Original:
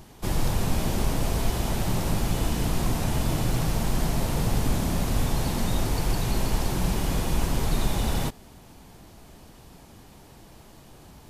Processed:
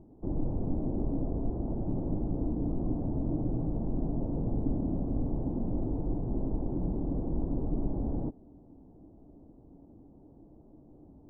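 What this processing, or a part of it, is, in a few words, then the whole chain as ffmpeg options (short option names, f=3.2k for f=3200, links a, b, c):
under water: -af "lowpass=f=690:w=0.5412,lowpass=f=690:w=1.3066,equalizer=f=290:t=o:w=0.48:g=11.5,volume=-7.5dB"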